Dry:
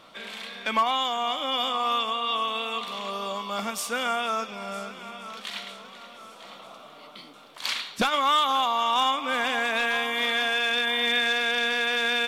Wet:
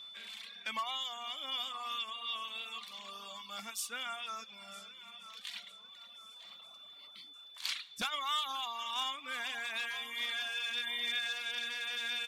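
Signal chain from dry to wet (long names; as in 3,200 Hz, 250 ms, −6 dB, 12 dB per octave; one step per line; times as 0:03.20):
steady tone 3,500 Hz −39 dBFS
guitar amp tone stack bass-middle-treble 5-5-5
reverb reduction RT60 1.3 s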